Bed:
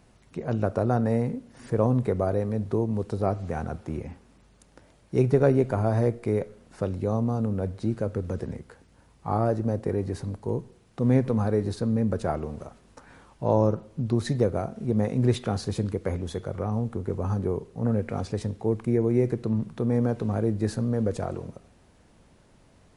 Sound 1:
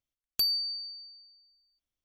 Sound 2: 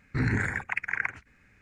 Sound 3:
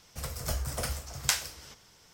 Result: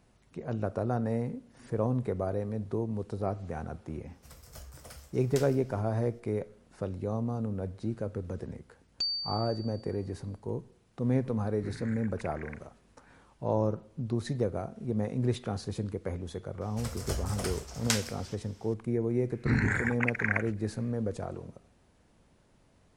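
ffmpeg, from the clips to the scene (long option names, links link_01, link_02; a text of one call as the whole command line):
ffmpeg -i bed.wav -i cue0.wav -i cue1.wav -i cue2.wav -filter_complex "[3:a]asplit=2[link_01][link_02];[2:a]asplit=2[link_03][link_04];[0:a]volume=-6.5dB[link_05];[1:a]aresample=16000,aresample=44100[link_06];[link_02]lowpass=11000[link_07];[link_01]atrim=end=2.13,asetpts=PTS-STARTPTS,volume=-15dB,afade=type=in:duration=0.004:curve=hsin,afade=type=out:start_time=2.126:duration=0.004:curve=hsin,adelay=4070[link_08];[link_06]atrim=end=2.04,asetpts=PTS-STARTPTS,volume=-4dB,afade=type=in:duration=0.004:curve=hsin,afade=type=out:start_time=2.036:duration=0.004:curve=hsin,adelay=8610[link_09];[link_03]atrim=end=1.61,asetpts=PTS-STARTPTS,volume=-18dB,afade=type=in:duration=0.004:curve=hsin,afade=type=out:start_time=1.606:duration=0.004:curve=hsin,adelay=11480[link_10];[link_07]atrim=end=2.13,asetpts=PTS-STARTPTS,volume=-2dB,afade=type=in:duration=0.004:curve=hsin,afade=type=out:start_time=2.126:duration=0.004:curve=hsin,adelay=16610[link_11];[link_04]atrim=end=1.61,asetpts=PTS-STARTPTS,volume=-0.5dB,afade=type=in:duration=0.004:curve=hsin,afade=type=out:start_time=1.606:duration=0.004:curve=hsin,adelay=19310[link_12];[link_05][link_08][link_09][link_10][link_11][link_12]amix=inputs=6:normalize=0" out.wav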